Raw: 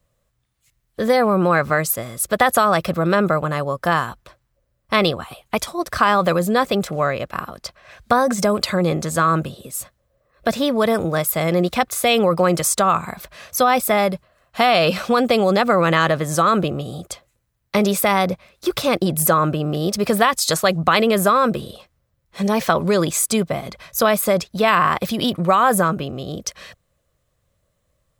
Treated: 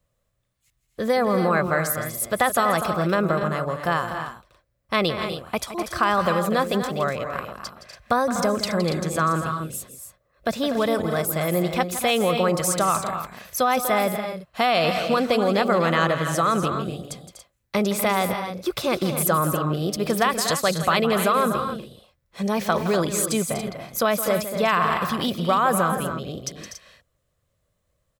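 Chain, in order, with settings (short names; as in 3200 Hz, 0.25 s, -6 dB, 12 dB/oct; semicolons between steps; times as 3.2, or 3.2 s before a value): loudspeakers at several distances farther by 57 m -12 dB, 84 m -10 dB, 97 m -11 dB; gain -5 dB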